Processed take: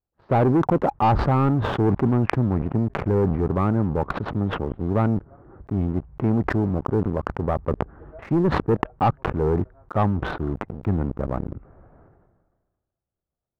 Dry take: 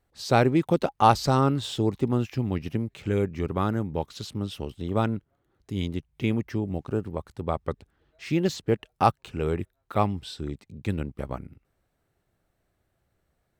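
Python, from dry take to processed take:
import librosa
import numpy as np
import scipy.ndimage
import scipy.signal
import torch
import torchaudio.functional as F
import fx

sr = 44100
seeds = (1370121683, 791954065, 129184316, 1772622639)

y = fx.leveller(x, sr, passes=3)
y = scipy.signal.sosfilt(scipy.signal.butter(4, 1300.0, 'lowpass', fs=sr, output='sos'), y)
y = fx.leveller(y, sr, passes=1)
y = fx.sustainer(y, sr, db_per_s=38.0)
y = y * librosa.db_to_amplitude(-8.0)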